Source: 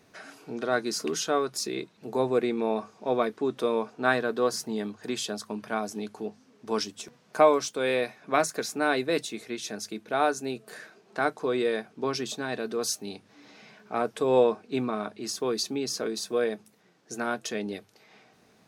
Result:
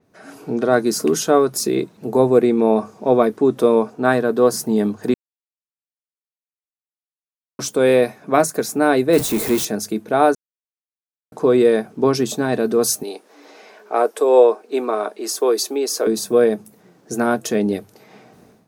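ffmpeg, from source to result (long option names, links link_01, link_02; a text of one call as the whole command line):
ffmpeg -i in.wav -filter_complex "[0:a]asettb=1/sr,asplit=3[link_01][link_02][link_03];[link_01]atrim=end=9.134[link_04];[link_02]atrim=start=9.13:end=9.65,asetpts=PTS-STARTPTS,afade=type=in:duration=0.004:curve=qsin,afade=type=out:start_time=0.516:duration=0.004:curve=qsin,aeval=exprs='val(0)+0.5*0.0266*sgn(val(0))':channel_layout=same[link_05];[link_03]atrim=start=9.646[link_06];[link_04][link_05]acrossfade=duration=0.004:curve1=hsin:curve2=qsin[link_07];[link_07][link_06]acrossfade=duration=0.004:curve1=qsin:curve2=hsin,asettb=1/sr,asplit=3[link_08][link_09][link_10];[link_08]atrim=end=13.034[link_11];[link_09]atrim=start=13.03:end=16.07,asetpts=PTS-STARTPTS,afade=type=in:duration=0.004:curve=qsin,afade=type=out:start_time=3.036:duration=0.004:curve=qsin,highpass=frequency=370:width=0.5412,highpass=frequency=370:width=1.3066[link_12];[link_10]atrim=start=16.066[link_13];[link_11][link_12]acrossfade=duration=0.004:curve1=hsin:curve2=qsin[link_14];[link_14][link_13]acrossfade=duration=0.004:curve1=qsin:curve2=hsin,asplit=5[link_15][link_16][link_17][link_18][link_19];[link_15]atrim=end=5.14,asetpts=PTS-STARTPTS,afade=type=out:start_time=5.136:duration=0.004:curve=hsin[link_20];[link_16]atrim=start=5.14:end=7.59,asetpts=PTS-STARTPTS,volume=0[link_21];[link_17]atrim=start=7.59:end=10.35,asetpts=PTS-STARTPTS,afade=type=in:duration=0.004:curve=hsin,afade=type=out:start_time=2.756:duration=0.004:curve=hsin[link_22];[link_18]atrim=start=10.35:end=11.32,asetpts=PTS-STARTPTS,volume=0[link_23];[link_19]atrim=start=11.32,asetpts=PTS-STARTPTS,afade=type=in:duration=0.004:curve=hsin[link_24];[link_20][link_21][link_22][link_23][link_24]concat=n=5:v=0:a=1,equalizer=frequency=3400:width=0.33:gain=-11.5,dynaudnorm=framelen=100:gausssize=5:maxgain=15.5dB,adynamicequalizer=threshold=0.01:dfrequency=6600:dqfactor=0.7:tfrequency=6600:tqfactor=0.7:attack=5:release=100:ratio=0.375:range=2.5:mode=boostabove:tftype=highshelf" out.wav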